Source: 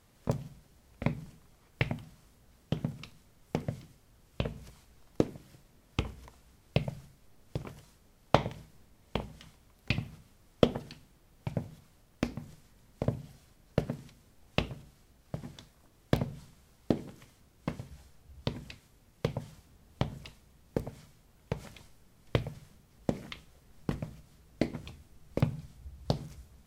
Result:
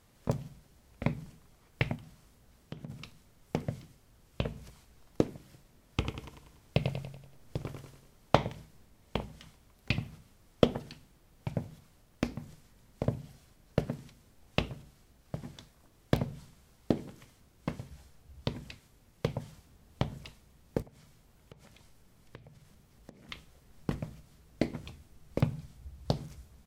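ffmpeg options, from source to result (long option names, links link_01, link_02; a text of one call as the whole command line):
ffmpeg -i in.wav -filter_complex "[0:a]asettb=1/sr,asplit=3[link_01][link_02][link_03];[link_01]atrim=end=1.954[link_04];[link_02]atrim=start=1.95:end=2.9,asetpts=PTS-STARTPTS,afade=type=in:duration=0.004:curve=qsin,afade=type=out:start_time=0.946:duration=0.004:curve=qsin,acompressor=threshold=-46dB:ratio=2:attack=3.2:release=140:knee=1:detection=peak[link_05];[link_03]atrim=start=2.896[link_06];[link_04][link_05]acrossfade=duration=0.004:curve1=hsin:curve2=qsin[link_07];[link_07][link_06]acrossfade=duration=0.004:curve1=qsin:curve2=hsin,asplit=3[link_08][link_09][link_10];[link_08]afade=type=out:start_time=6.01:duration=0.02[link_11];[link_09]aecho=1:1:95|190|285|380|475|570:0.501|0.241|0.115|0.0554|0.0266|0.0128,afade=type=in:start_time=6.01:duration=0.02,afade=type=out:start_time=8.36:duration=0.02[link_12];[link_10]afade=type=in:start_time=8.36:duration=0.02[link_13];[link_11][link_12][link_13]amix=inputs=3:normalize=0,asettb=1/sr,asplit=3[link_14][link_15][link_16];[link_14]atrim=end=20.824[link_17];[link_15]atrim=start=20.82:end=23.29,asetpts=PTS-STARTPTS,afade=type=in:duration=0.004:curve=qsin,afade=type=out:start_time=2.466:duration=0.004:curve=qsin,acompressor=threshold=-54dB:ratio=3:attack=3.2:release=140:knee=1:detection=peak[link_18];[link_16]atrim=start=23.286[link_19];[link_17][link_18]acrossfade=duration=0.004:curve1=hsin:curve2=qsin[link_20];[link_20][link_19]acrossfade=duration=0.004:curve1=qsin:curve2=hsin" out.wav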